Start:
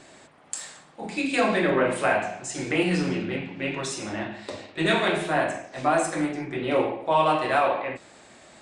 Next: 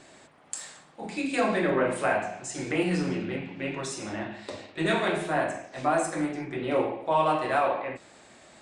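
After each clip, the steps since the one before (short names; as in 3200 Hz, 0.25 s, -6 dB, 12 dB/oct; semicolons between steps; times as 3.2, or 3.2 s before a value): dynamic EQ 3200 Hz, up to -4 dB, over -40 dBFS, Q 1.1; gain -2.5 dB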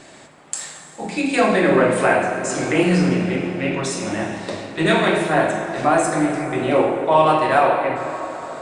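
plate-style reverb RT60 4.9 s, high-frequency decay 0.5×, DRR 6 dB; gain +8.5 dB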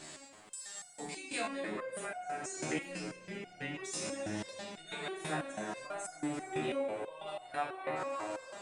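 high shelf 3200 Hz +10 dB; compressor 6:1, threshold -25 dBFS, peak gain reduction 15 dB; stepped resonator 6.1 Hz 77–720 Hz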